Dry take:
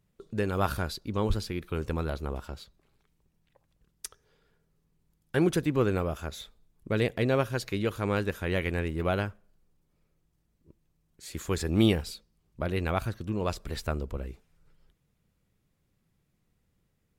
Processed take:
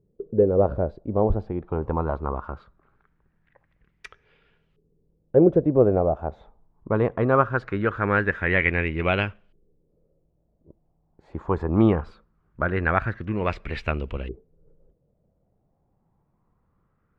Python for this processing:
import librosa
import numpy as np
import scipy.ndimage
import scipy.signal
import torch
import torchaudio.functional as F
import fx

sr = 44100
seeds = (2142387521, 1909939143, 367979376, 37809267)

y = fx.filter_lfo_lowpass(x, sr, shape='saw_up', hz=0.21, low_hz=410.0, high_hz=3000.0, q=3.8)
y = y * 10.0 ** (4.0 / 20.0)